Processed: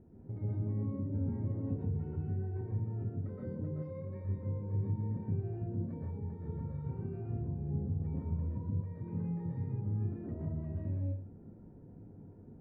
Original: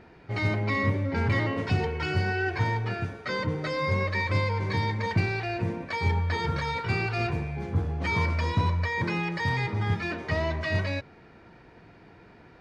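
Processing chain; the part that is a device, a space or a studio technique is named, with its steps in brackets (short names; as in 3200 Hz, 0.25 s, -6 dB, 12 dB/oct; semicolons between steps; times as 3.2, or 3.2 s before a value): television next door (compressor 4:1, threshold -35 dBFS, peak gain reduction 13.5 dB; LPF 290 Hz 12 dB/oct; reverb RT60 0.40 s, pre-delay 0.115 s, DRR -4 dB); 3.82–4.25 tilt +2 dB/oct; gain -3 dB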